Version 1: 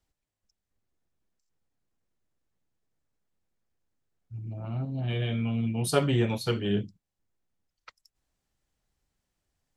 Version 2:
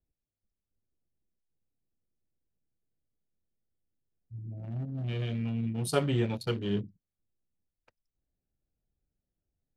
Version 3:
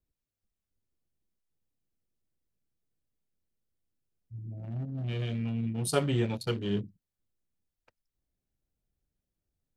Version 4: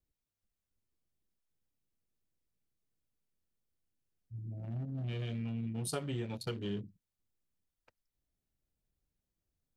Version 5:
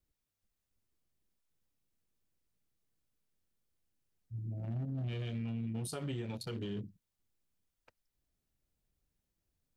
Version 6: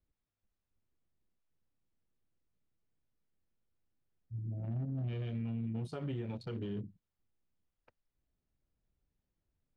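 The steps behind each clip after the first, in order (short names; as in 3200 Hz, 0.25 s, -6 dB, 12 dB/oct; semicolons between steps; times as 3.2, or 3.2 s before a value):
Wiener smoothing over 41 samples; gain -3 dB
dynamic EQ 8100 Hz, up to +4 dB, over -56 dBFS, Q 0.87
compressor 6:1, threshold -32 dBFS, peak gain reduction 11 dB; gain -2 dB
limiter -34 dBFS, peak gain reduction 8.5 dB; gain +2.5 dB
tape spacing loss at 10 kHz 24 dB; gain +1 dB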